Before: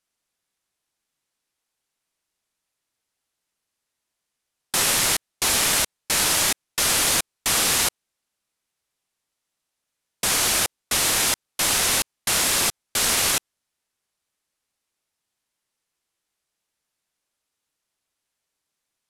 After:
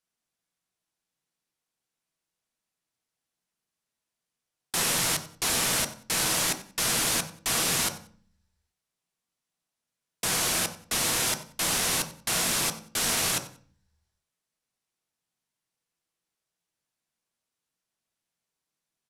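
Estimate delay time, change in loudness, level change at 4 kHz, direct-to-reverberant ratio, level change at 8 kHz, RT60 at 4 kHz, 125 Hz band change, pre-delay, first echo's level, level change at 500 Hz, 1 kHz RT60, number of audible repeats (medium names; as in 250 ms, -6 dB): 92 ms, -5.5 dB, -5.5 dB, 6.0 dB, -5.5 dB, 0.50 s, -1.0 dB, 3 ms, -17.0 dB, -4.0 dB, 0.45 s, 2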